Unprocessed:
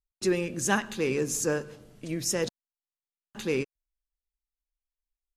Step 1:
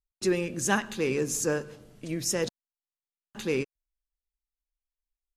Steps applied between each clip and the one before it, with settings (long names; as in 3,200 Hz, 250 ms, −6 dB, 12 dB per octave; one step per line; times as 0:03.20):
no processing that can be heard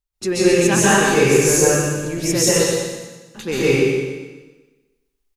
soft clipping −13 dBFS, distortion −27 dB
repeating echo 122 ms, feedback 40%, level −7.5 dB
dense smooth reverb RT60 1.2 s, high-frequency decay 0.95×, pre-delay 120 ms, DRR −9.5 dB
level +4 dB